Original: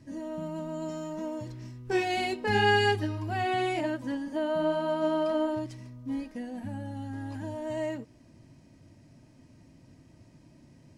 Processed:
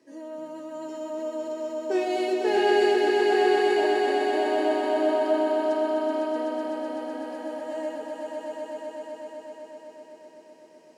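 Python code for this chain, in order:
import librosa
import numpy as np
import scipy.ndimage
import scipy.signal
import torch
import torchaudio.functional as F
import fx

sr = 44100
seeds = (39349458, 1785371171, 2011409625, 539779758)

y = fx.dynamic_eq(x, sr, hz=2000.0, q=1.2, threshold_db=-44.0, ratio=4.0, max_db=-4)
y = fx.ladder_highpass(y, sr, hz=340.0, resonance_pct=45)
y = fx.echo_swell(y, sr, ms=126, loudest=5, wet_db=-5.0)
y = y * librosa.db_to_amplitude(6.5)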